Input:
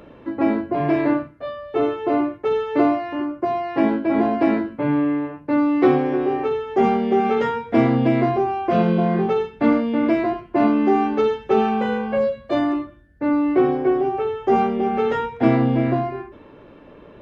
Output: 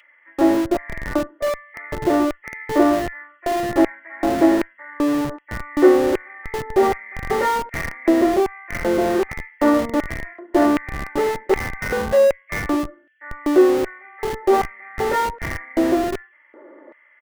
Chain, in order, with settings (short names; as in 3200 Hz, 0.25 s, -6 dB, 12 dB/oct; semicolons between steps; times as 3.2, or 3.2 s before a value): nonlinear frequency compression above 1800 Hz 4:1; comb 3.4 ms, depth 67%; on a send at -21 dB: reverb, pre-delay 6 ms; on the sum: LFO high-pass square 1.3 Hz 380–2300 Hz; low shelf 260 Hz -11.5 dB; in parallel at -5 dB: Schmitt trigger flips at -25.5 dBFS; on the sum: gain -1 dB